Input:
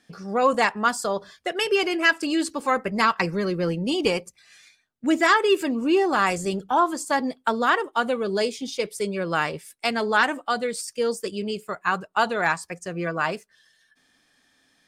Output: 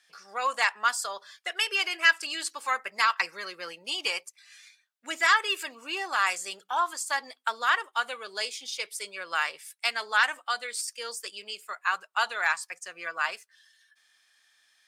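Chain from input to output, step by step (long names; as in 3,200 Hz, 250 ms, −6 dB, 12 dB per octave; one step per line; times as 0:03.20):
high-pass filter 1,300 Hz 12 dB per octave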